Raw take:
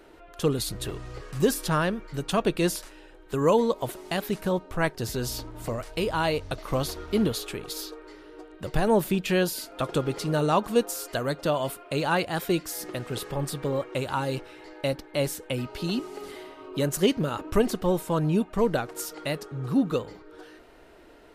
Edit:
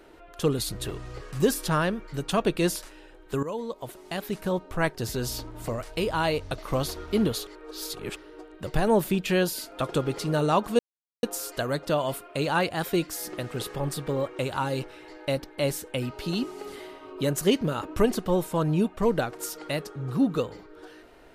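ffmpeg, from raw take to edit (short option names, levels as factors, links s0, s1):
-filter_complex "[0:a]asplit=5[s0][s1][s2][s3][s4];[s0]atrim=end=3.43,asetpts=PTS-STARTPTS,afade=t=out:st=3.426:d=0.004:c=hsin:silence=0.177828[s5];[s1]atrim=start=3.43:end=7.472,asetpts=PTS-STARTPTS,afade=t=in:d=1.29:silence=0.177828[s6];[s2]atrim=start=7.468:end=8.162,asetpts=PTS-STARTPTS,areverse[s7];[s3]atrim=start=8.158:end=10.79,asetpts=PTS-STARTPTS,afade=t=out:st=2.628:d=0.004:c=hsin,apad=pad_dur=0.44[s8];[s4]atrim=start=10.79,asetpts=PTS-STARTPTS,afade=t=in:d=0.004:c=hsin[s9];[s5][s6]concat=n=2:v=0:a=1[s10];[s10][s7]acrossfade=d=0.004:c1=hsin:c2=hsin[s11];[s8][s9]concat=n=2:v=0:a=1[s12];[s11][s12]acrossfade=d=0.004:c1=hsin:c2=hsin"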